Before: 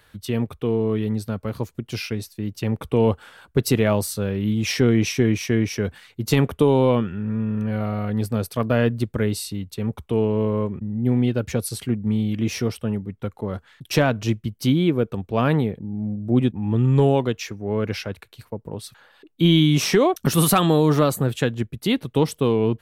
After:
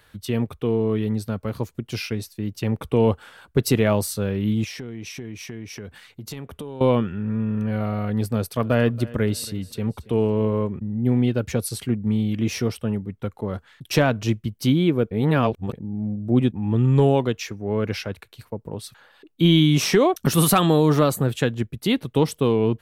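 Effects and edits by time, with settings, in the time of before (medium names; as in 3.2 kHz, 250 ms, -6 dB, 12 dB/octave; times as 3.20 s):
4.64–6.81 s: compression 4:1, threshold -34 dBFS
8.28–10.61 s: feedback delay 278 ms, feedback 33%, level -20 dB
15.11–15.73 s: reverse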